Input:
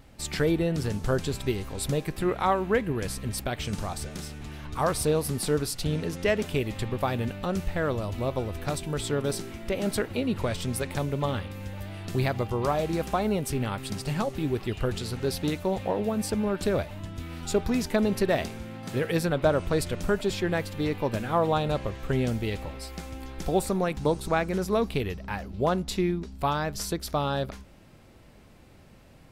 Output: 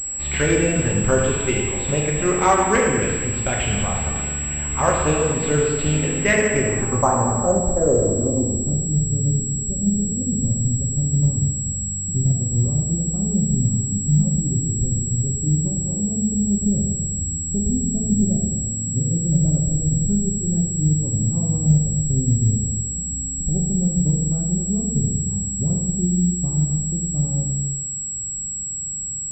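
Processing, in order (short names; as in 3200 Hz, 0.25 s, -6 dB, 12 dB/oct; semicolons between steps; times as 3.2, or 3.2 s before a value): low-pass sweep 2700 Hz -> 160 Hz, 6.08–8.97; non-linear reverb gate 0.5 s falling, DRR -2.5 dB; pulse-width modulation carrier 7700 Hz; gain +3 dB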